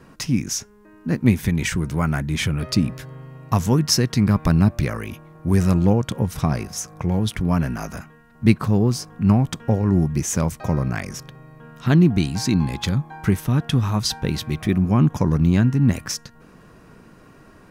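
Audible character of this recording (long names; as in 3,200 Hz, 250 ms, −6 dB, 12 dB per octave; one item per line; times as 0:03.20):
background noise floor −49 dBFS
spectral slope −6.0 dB per octave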